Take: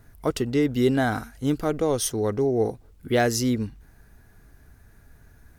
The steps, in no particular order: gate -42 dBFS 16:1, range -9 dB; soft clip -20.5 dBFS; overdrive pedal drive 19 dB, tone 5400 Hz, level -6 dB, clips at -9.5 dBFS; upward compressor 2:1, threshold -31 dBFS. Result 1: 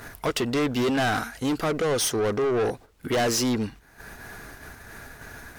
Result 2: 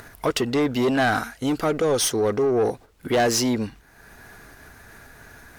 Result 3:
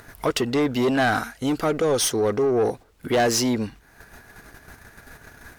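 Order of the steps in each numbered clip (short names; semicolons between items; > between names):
upward compressor > overdrive pedal > soft clip > gate; gate > soft clip > upward compressor > overdrive pedal; soft clip > upward compressor > gate > overdrive pedal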